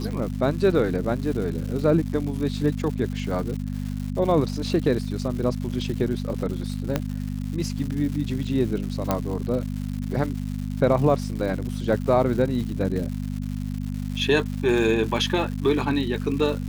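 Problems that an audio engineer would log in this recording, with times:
crackle 270 per s -32 dBFS
hum 50 Hz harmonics 5 -29 dBFS
6.96 s: pop -9 dBFS
9.11 s: pop -8 dBFS

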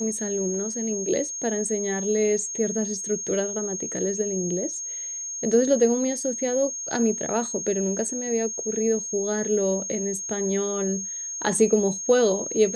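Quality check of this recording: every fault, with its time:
whine 6.5 kHz -30 dBFS

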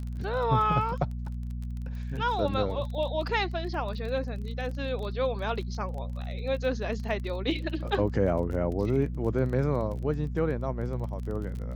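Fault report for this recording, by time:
crackle 24 per s -36 dBFS
hum 60 Hz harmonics 4 -34 dBFS

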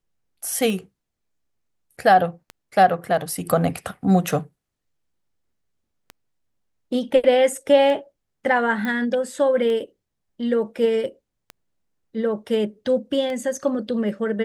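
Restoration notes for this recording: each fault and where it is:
tick 33 1/3 rpm
8.85 s: pop -15 dBFS
12.49 s: dropout 2.1 ms

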